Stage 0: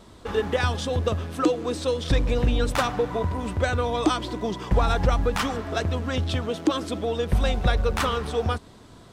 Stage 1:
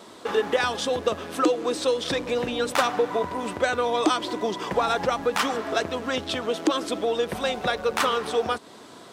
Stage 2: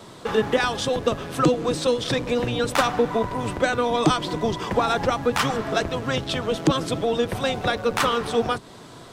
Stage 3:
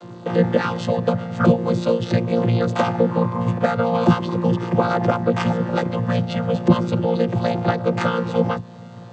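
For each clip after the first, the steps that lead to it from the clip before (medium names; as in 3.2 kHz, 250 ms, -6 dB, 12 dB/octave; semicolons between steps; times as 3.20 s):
in parallel at +1 dB: compression, threshold -32 dBFS, peak gain reduction 15.5 dB; on the sum: high-pass 300 Hz 12 dB/octave
octave divider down 1 oct, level +1 dB; trim +1.5 dB
vocoder on a held chord bare fifth, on A#2; trim +4.5 dB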